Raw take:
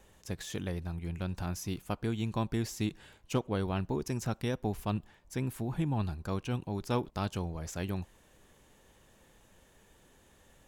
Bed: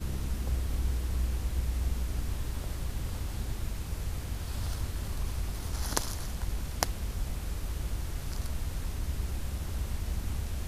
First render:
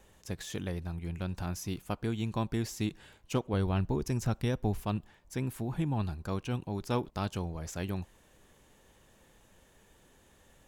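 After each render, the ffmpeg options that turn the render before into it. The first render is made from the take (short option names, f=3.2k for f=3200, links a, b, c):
-filter_complex "[0:a]asettb=1/sr,asplit=3[a][b][c];[a]atrim=end=3.534[d];[b]atrim=start=3.53:end=4.78,asetpts=PTS-STARTPTS,afade=t=in:d=0.004:c=qsin,afade=t=out:st=1.246:d=0.004:c=qsin,lowshelf=f=99:g=10.5[e];[c]atrim=start=4.776[f];[d][e]acrossfade=d=0.004:c1=hsin:c2=qsin[g];[g][f]acrossfade=d=0.004:c1=qsin:c2=hsin"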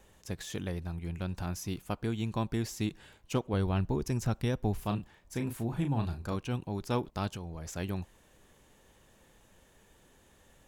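-filter_complex "[0:a]asettb=1/sr,asplit=3[a][b][c];[a]atrim=end=4.794[d];[b]atrim=start=4.79:end=6.36,asetpts=PTS-STARTPTS,afade=t=in:d=0.004:c=qsin,afade=t=out:st=1.566:d=0.004:c=qsin,asplit=2[e][f];[f]adelay=35,volume=-7dB[g];[e][g]amix=inputs=2:normalize=0,atrim=end_sample=69237[h];[c]atrim=start=6.356[i];[d][h]acrossfade=d=0.004:c1=hsin:c2=qsin[j];[j][i]acrossfade=d=0.004:c1=qsin:c2=hsin,asettb=1/sr,asplit=3[k][l][m];[k]atrim=end=7.314[n];[l]atrim=start=7.31:end=7.71,asetpts=PTS-STARTPTS,afade=t=in:d=0.004:c=qsin,afade=t=out:st=0.396:d=0.004:c=qsin,acompressor=threshold=-37dB:ratio=3:attack=3.2:release=140:knee=1:detection=peak[o];[m]atrim=start=7.706[p];[n][o]acrossfade=d=0.004:c1=hsin:c2=qsin[q];[q][p]acrossfade=d=0.004:c1=qsin:c2=hsin"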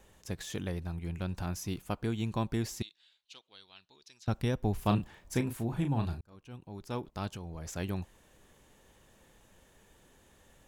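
-filter_complex "[0:a]asettb=1/sr,asplit=3[a][b][c];[a]atrim=end=2.824[d];[b]atrim=start=2.82:end=4.28,asetpts=PTS-STARTPTS,afade=t=in:d=0.004:c=qsin,afade=t=out:st=1.456:d=0.004:c=qsin,bandpass=f=3.9k:t=q:w=3.9[e];[c]atrim=start=4.276[f];[d][e]acrossfade=d=0.004:c1=hsin:c2=qsin[g];[g][f]acrossfade=d=0.004:c1=qsin:c2=hsin,asplit=4[h][i][j][k];[h]atrim=end=4.862[l];[i]atrim=start=4.858:end=5.412,asetpts=PTS-STARTPTS,volume=5dB[m];[j]atrim=start=5.408:end=6.21,asetpts=PTS-STARTPTS,afade=t=out:st=0.798:d=0.004:c=hsin[n];[k]atrim=start=6.21,asetpts=PTS-STARTPTS,afade=t=in:d=1.46[o];[l][m]acrossfade=d=0.004:c1=hsin:c2=hsin[p];[n][o]concat=n=2:v=0:a=1[q];[p][q]acrossfade=d=0.004:c1=hsin:c2=hsin"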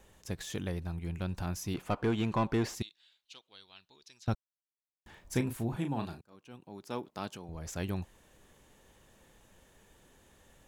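-filter_complex "[0:a]asettb=1/sr,asplit=3[a][b][c];[a]atrim=end=1.744[d];[b]atrim=start=1.74:end=2.75,asetpts=PTS-STARTPTS,afade=t=in:d=0.004:c=qsin,afade=t=out:st=1.006:d=0.004:c=qsin,asplit=2[e][f];[f]highpass=f=720:p=1,volume=21dB,asoftclip=type=tanh:threshold=-19dB[g];[e][g]amix=inputs=2:normalize=0,lowpass=f=1.2k:p=1,volume=-6dB[h];[c]atrim=start=2.746[i];[d][h]acrossfade=d=0.004:c1=hsin:c2=qsin[j];[j][i]acrossfade=d=0.004:c1=qsin:c2=hsin,asettb=1/sr,asplit=3[k][l][m];[k]atrim=end=5.764[n];[l]atrim=start=5.76:end=7.49,asetpts=PTS-STARTPTS,afade=t=in:d=0.004:c=qsin,afade=t=out:st=1.726:d=0.004:c=qsin,highpass=190[o];[m]atrim=start=7.486[p];[n][o]acrossfade=d=0.004:c1=hsin:c2=qsin[q];[q][p]acrossfade=d=0.004:c1=qsin:c2=hsin,asplit=3[r][s][t];[r]atrim=end=4.35,asetpts=PTS-STARTPTS,afade=t=out:st=4.346:d=0.004:c=hsin[u];[s]atrim=start=4.35:end=5.06,asetpts=PTS-STARTPTS,volume=0[v];[t]atrim=start=5.06,asetpts=PTS-STARTPTS,afade=t=in:d=0.004:c=hsin[w];[u][v][w]concat=n=3:v=0:a=1"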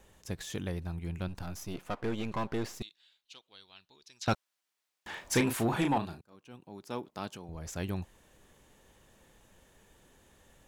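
-filter_complex "[0:a]asettb=1/sr,asplit=3[a][b][c];[a]atrim=end=1.284[d];[b]atrim=start=1.28:end=2.83,asetpts=PTS-STARTPTS,afade=t=in:d=0.004:c=qsin,afade=t=out:st=1.546:d=0.004:c=qsin,aeval=exprs='if(lt(val(0),0),0.251*val(0),val(0))':c=same[e];[c]atrim=start=2.826[f];[d][e]acrossfade=d=0.004:c1=hsin:c2=qsin[g];[g][f]acrossfade=d=0.004:c1=qsin:c2=hsin,asettb=1/sr,asplit=3[h][i][j];[h]atrim=end=4.214[k];[i]atrim=start=4.21:end=5.98,asetpts=PTS-STARTPTS,afade=t=in:d=0.004:c=qsin,afade=t=out:st=1.766:d=0.004:c=qsin,asplit=2[l][m];[m]highpass=f=720:p=1,volume=21dB,asoftclip=type=tanh:threshold=-15.5dB[n];[l][n]amix=inputs=2:normalize=0,lowpass=f=5.7k:p=1,volume=-6dB[o];[j]atrim=start=5.976[p];[k][o]acrossfade=d=0.004:c1=hsin:c2=qsin[q];[q][p]acrossfade=d=0.004:c1=qsin:c2=hsin"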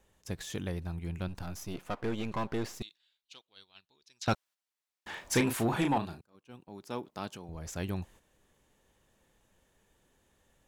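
-af "agate=range=-8dB:threshold=-54dB:ratio=16:detection=peak"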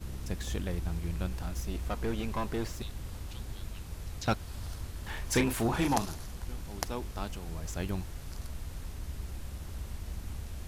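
-filter_complex "[1:a]volume=-6dB[a];[0:a][a]amix=inputs=2:normalize=0"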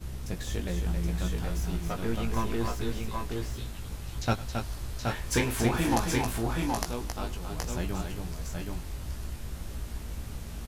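-filter_complex "[0:a]asplit=2[a][b];[b]adelay=17,volume=-5dB[c];[a][c]amix=inputs=2:normalize=0,aecho=1:1:101|271|773|797:0.112|0.501|0.631|0.266"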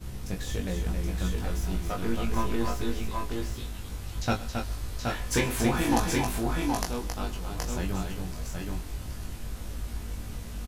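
-filter_complex "[0:a]asplit=2[a][b];[b]adelay=21,volume=-5dB[c];[a][c]amix=inputs=2:normalize=0,aecho=1:1:132:0.0944"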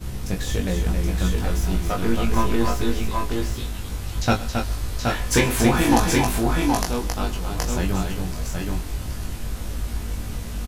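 -af "volume=7.5dB,alimiter=limit=-3dB:level=0:latency=1"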